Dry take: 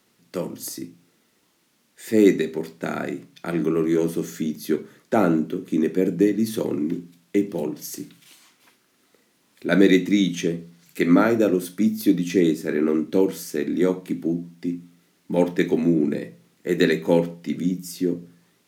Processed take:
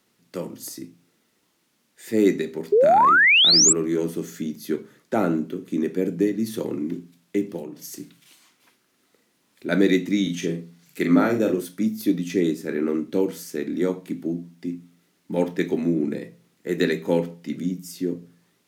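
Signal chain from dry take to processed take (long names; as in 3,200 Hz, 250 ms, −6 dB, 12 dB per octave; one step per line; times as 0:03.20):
0:02.72–0:03.73: sound drawn into the spectrogram rise 390–8,100 Hz −12 dBFS
0:07.56–0:07.98: downward compressor, threshold −28 dBFS, peak gain reduction 6.5 dB
0:10.22–0:11.61: double-tracking delay 42 ms −6 dB
level −3 dB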